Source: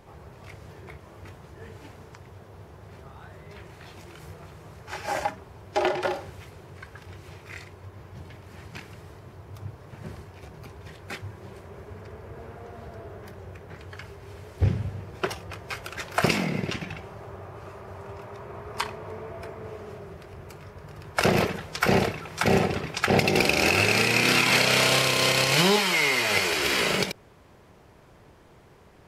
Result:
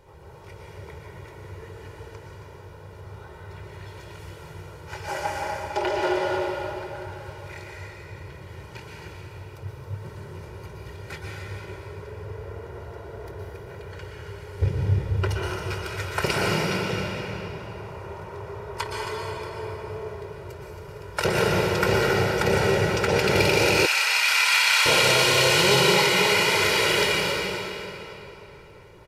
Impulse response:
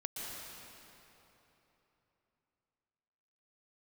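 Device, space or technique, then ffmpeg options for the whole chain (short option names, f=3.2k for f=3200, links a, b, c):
cave: -filter_complex "[0:a]aecho=1:1:272:0.316[a];[1:a]atrim=start_sample=2205[b];[a][b]afir=irnorm=-1:irlink=0,asettb=1/sr,asplit=3[c][d][e];[c]atrim=end=23.864[f];[d]atrim=start=23.86:end=24.86,asetpts=PTS-STARTPTS,afade=t=in:d=0.004:c=qsin,afade=t=out:st=0.996:d=0.004:c=qsin,highpass=f=910:w=0.5412,highpass=f=910:w=1.3066[g];[e]atrim=start=24.856[h];[f][g]acrossfade=d=0.004:c1=hsin:c2=qsin[i];[i][h]acrossfade=d=0.004:c1=qsin:c2=hsin,aecho=1:1:2.1:0.62"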